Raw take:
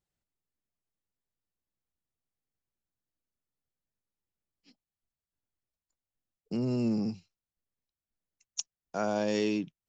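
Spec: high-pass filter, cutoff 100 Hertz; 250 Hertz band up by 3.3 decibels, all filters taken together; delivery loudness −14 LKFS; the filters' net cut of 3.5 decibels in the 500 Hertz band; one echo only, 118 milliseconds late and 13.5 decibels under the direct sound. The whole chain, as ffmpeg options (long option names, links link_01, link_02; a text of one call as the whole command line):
ffmpeg -i in.wav -af "highpass=100,equalizer=frequency=250:width_type=o:gain=5.5,equalizer=frequency=500:width_type=o:gain=-6.5,aecho=1:1:118:0.211,volume=16.5dB" out.wav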